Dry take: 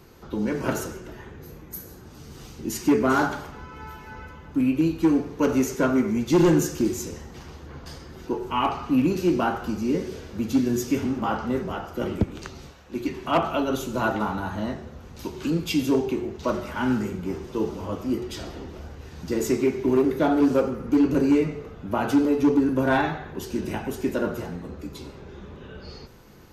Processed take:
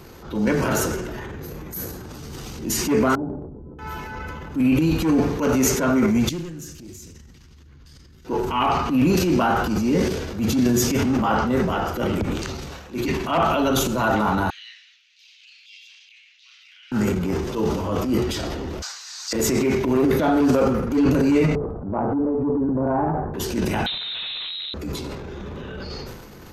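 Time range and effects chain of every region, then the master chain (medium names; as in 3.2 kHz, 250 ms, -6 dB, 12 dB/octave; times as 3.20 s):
3.15–3.79 s: four-pole ladder low-pass 510 Hz, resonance 25% + compression, threshold -37 dBFS
6.29–8.25 s: amplifier tone stack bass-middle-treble 6-0-2 + compression 2:1, threshold -44 dBFS + loudspeaker Doppler distortion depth 0.13 ms
14.50–16.92 s: steep high-pass 2.4 kHz + distance through air 220 m + compression 3:1, threshold -54 dBFS
18.82–19.33 s: high-pass 1.1 kHz 24 dB/octave + high-order bell 5.7 kHz +15 dB 1.3 oct
21.55–23.34 s: low-pass 1 kHz 24 dB/octave + compression 3:1, threshold -26 dBFS
23.86–24.74 s: valve stage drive 37 dB, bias 0.75 + transient shaper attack +6 dB, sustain +11 dB + frequency inversion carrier 4 kHz
whole clip: dynamic bell 350 Hz, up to -5 dB, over -33 dBFS, Q 2.4; peak limiter -18 dBFS; transient shaper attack -8 dB, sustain +8 dB; trim +7.5 dB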